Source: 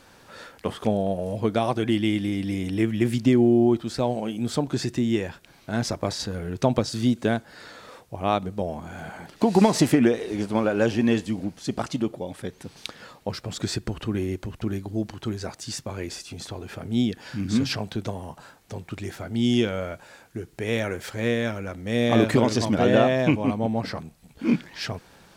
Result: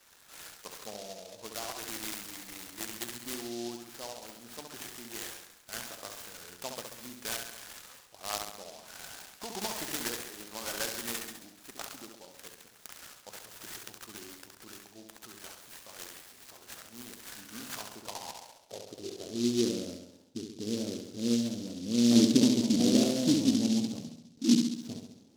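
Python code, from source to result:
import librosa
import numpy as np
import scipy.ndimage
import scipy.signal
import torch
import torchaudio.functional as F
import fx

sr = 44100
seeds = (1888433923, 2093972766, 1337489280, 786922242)

y = fx.filter_sweep_bandpass(x, sr, from_hz=1800.0, to_hz=260.0, start_s=17.3, end_s=19.83, q=3.2)
y = fx.room_flutter(y, sr, wall_m=11.6, rt60_s=0.81)
y = fx.noise_mod_delay(y, sr, seeds[0], noise_hz=4600.0, depth_ms=0.15)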